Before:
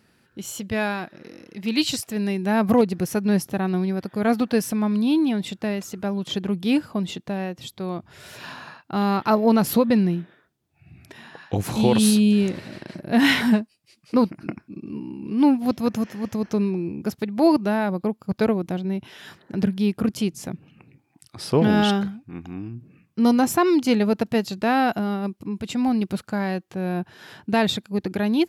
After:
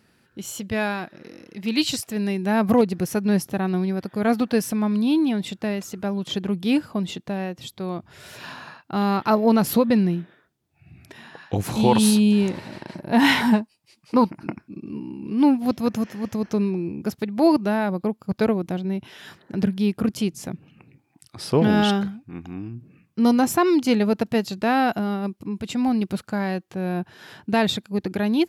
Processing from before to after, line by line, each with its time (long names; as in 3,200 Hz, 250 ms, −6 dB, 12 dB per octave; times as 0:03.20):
0:11.86–0:14.56: parametric band 910 Hz +10.5 dB 0.35 octaves